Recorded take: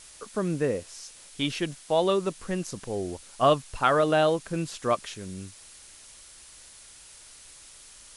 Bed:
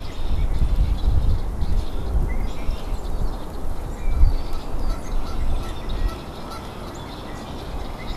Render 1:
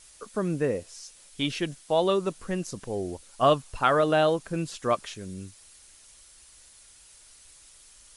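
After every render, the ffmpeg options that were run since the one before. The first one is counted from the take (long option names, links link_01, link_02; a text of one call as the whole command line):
ffmpeg -i in.wav -af "afftdn=noise_reduction=6:noise_floor=-50" out.wav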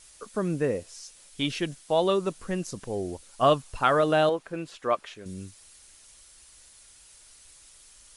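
ffmpeg -i in.wav -filter_complex "[0:a]asettb=1/sr,asplit=3[link_01][link_02][link_03];[link_01]atrim=end=4.294[link_04];[link_02]atrim=start=4.29:end=5.26,asetpts=PTS-STARTPTS,afade=type=in:duration=0.004:curve=qsin,afade=type=out:start_time=0.966:duration=0.004:curve=qsin,bass=frequency=250:gain=-11,treble=frequency=4000:gain=-11[link_05];[link_03]atrim=start=5.256[link_06];[link_04][link_05]acrossfade=duration=0.004:curve1=hsin:curve2=qsin[link_07];[link_07][link_06]acrossfade=duration=0.004:curve1=qsin:curve2=hsin" out.wav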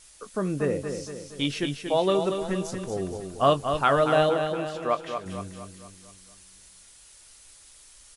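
ffmpeg -i in.wav -filter_complex "[0:a]asplit=2[link_01][link_02];[link_02]adelay=21,volume=-12dB[link_03];[link_01][link_03]amix=inputs=2:normalize=0,aecho=1:1:233|466|699|932|1165|1398:0.447|0.223|0.112|0.0558|0.0279|0.014" out.wav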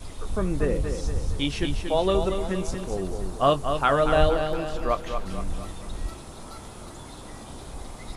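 ffmpeg -i in.wav -i bed.wav -filter_complex "[1:a]volume=-8.5dB[link_01];[0:a][link_01]amix=inputs=2:normalize=0" out.wav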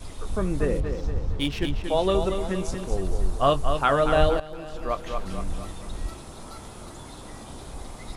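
ffmpeg -i in.wav -filter_complex "[0:a]asettb=1/sr,asplit=3[link_01][link_02][link_03];[link_01]atrim=end=0.804[link_04];[link_02]atrim=start=0.8:end=1.84,asetpts=PTS-STARTPTS,afade=type=in:duration=0.004:curve=qsin,afade=type=out:start_time=1.036:duration=0.004:curve=qsin,adynamicsmooth=sensitivity=7.5:basefreq=2300[link_05];[link_03]atrim=start=1.836[link_06];[link_04][link_05]acrossfade=duration=0.004:curve1=hsin:curve2=qsin[link_07];[link_07][link_06]acrossfade=duration=0.004:curve1=qsin:curve2=hsin,asplit=3[link_08][link_09][link_10];[link_08]afade=type=out:start_time=2.9:duration=0.02[link_11];[link_09]asubboost=boost=3:cutoff=100,afade=type=in:start_time=2.9:duration=0.02,afade=type=out:start_time=3.73:duration=0.02[link_12];[link_10]afade=type=in:start_time=3.73:duration=0.02[link_13];[link_11][link_12][link_13]amix=inputs=3:normalize=0,asplit=2[link_14][link_15];[link_14]atrim=end=4.4,asetpts=PTS-STARTPTS,afade=type=out:start_time=4.396:duration=0.004:curve=hsin:silence=0.177828[link_16];[link_15]atrim=start=4.4,asetpts=PTS-STARTPTS,afade=type=in:duration=0.8:silence=0.177828[link_17];[link_16][link_17]concat=n=2:v=0:a=1" out.wav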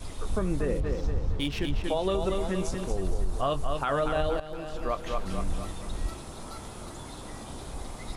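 ffmpeg -i in.wav -af "alimiter=limit=-18dB:level=0:latency=1:release=142" out.wav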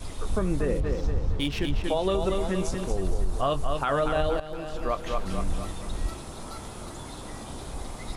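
ffmpeg -i in.wav -af "volume=2dB" out.wav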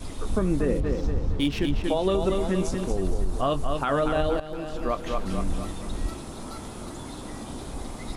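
ffmpeg -i in.wav -af "equalizer=frequency=260:width=1.4:gain=6" out.wav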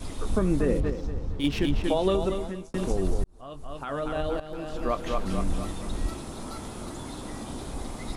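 ffmpeg -i in.wav -filter_complex "[0:a]asplit=5[link_01][link_02][link_03][link_04][link_05];[link_01]atrim=end=0.902[link_06];[link_02]atrim=start=0.898:end=1.442,asetpts=PTS-STARTPTS,volume=-5.5dB[link_07];[link_03]atrim=start=1.438:end=2.74,asetpts=PTS-STARTPTS,afade=type=out:start_time=0.662:duration=0.64[link_08];[link_04]atrim=start=2.74:end=3.24,asetpts=PTS-STARTPTS,afade=type=in:duration=0.004:curve=hsin,afade=type=out:start_time=0.496:duration=0.004:curve=hsin[link_09];[link_05]atrim=start=3.24,asetpts=PTS-STARTPTS,afade=type=in:duration=1.73[link_10];[link_06][link_07]acrossfade=duration=0.004:curve1=hsin:curve2=hsin[link_11];[link_08][link_09][link_10]concat=n=3:v=0:a=1[link_12];[link_11][link_12]acrossfade=duration=0.004:curve1=hsin:curve2=hsin" out.wav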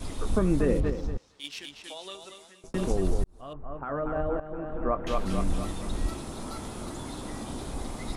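ffmpeg -i in.wav -filter_complex "[0:a]asettb=1/sr,asplit=3[link_01][link_02][link_03];[link_01]atrim=end=1.174[link_04];[link_02]atrim=start=1.17:end=2.64,asetpts=PTS-STARTPTS,afade=type=in:duration=0.004:curve=qsin,afade=type=out:start_time=1.466:duration=0.004:curve=qsin,bandpass=frequency=6500:width_type=q:width=0.74[link_05];[link_03]atrim=start=2.636[link_06];[link_04][link_05]acrossfade=duration=0.004:curve1=hsin:curve2=qsin[link_07];[link_07][link_06]acrossfade=duration=0.004:curve1=qsin:curve2=hsin,asettb=1/sr,asplit=3[link_08][link_09][link_10];[link_08]atrim=end=3.534[link_11];[link_09]atrim=start=3.53:end=5.07,asetpts=PTS-STARTPTS,afade=type=in:duration=0.004:curve=qsin,afade=type=out:start_time=1.536:duration=0.004:curve=qsin,lowpass=frequency=1700:width=0.5412,lowpass=frequency=1700:width=1.3066[link_12];[link_10]atrim=start=5.066[link_13];[link_11][link_12]acrossfade=duration=0.004:curve1=hsin:curve2=qsin[link_14];[link_14][link_13]acrossfade=duration=0.004:curve1=qsin:curve2=hsin" out.wav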